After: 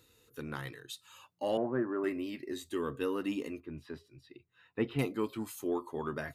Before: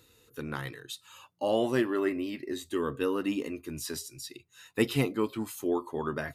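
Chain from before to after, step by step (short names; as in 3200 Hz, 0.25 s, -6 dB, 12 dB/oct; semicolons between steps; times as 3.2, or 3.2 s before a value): 1.57–2.04 Chebyshev band-pass 110–1600 Hz, order 4; in parallel at -11 dB: soft clip -24 dBFS, distortion -12 dB; 3.6–4.99 on the sum: air absorption 450 m; gain -6 dB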